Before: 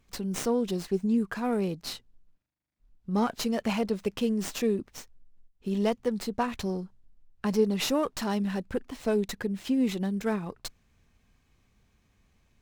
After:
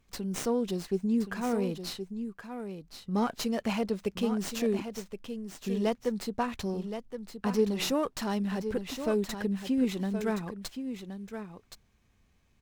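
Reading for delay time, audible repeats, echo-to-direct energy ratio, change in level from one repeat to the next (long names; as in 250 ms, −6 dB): 1,071 ms, 1, −9.0 dB, repeats not evenly spaced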